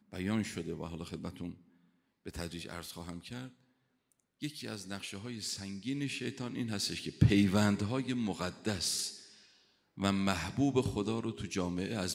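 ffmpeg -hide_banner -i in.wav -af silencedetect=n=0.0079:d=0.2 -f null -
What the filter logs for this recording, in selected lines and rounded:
silence_start: 1.52
silence_end: 2.26 | silence_duration: 0.74
silence_start: 3.48
silence_end: 4.42 | silence_duration: 0.94
silence_start: 9.17
silence_end: 9.98 | silence_duration: 0.81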